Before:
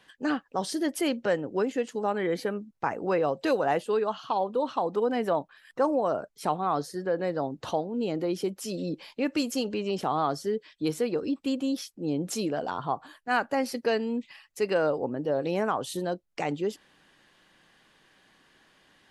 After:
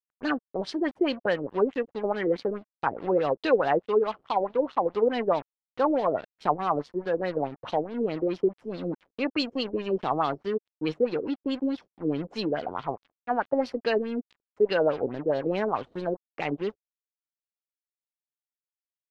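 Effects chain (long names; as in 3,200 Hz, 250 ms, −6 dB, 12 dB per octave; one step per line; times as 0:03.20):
dead-zone distortion −41.5 dBFS
auto-filter low-pass sine 4.7 Hz 380–4,200 Hz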